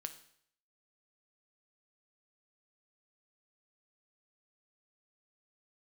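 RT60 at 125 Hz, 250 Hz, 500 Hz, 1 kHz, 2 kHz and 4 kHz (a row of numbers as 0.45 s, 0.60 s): 0.65 s, 0.60 s, 0.65 s, 0.65 s, 0.65 s, 0.65 s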